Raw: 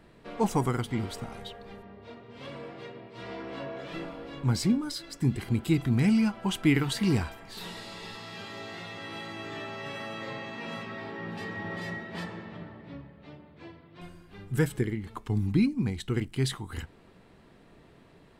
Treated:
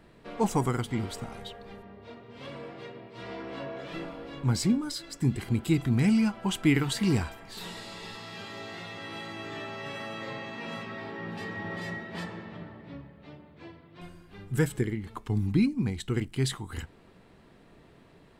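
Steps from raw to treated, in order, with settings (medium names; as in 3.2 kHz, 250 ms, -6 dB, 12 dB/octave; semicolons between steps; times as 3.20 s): dynamic bell 7.5 kHz, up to +4 dB, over -59 dBFS, Q 3.9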